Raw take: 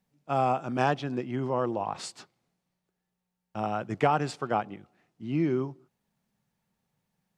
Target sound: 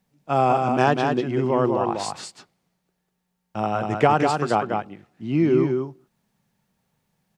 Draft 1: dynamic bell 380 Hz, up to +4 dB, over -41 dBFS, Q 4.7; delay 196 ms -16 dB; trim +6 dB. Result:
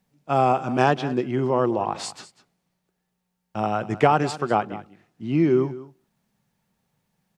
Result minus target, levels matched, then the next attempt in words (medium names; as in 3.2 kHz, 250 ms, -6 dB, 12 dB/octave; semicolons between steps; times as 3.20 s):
echo-to-direct -11.5 dB
dynamic bell 380 Hz, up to +4 dB, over -41 dBFS, Q 4.7; delay 196 ms -4.5 dB; trim +6 dB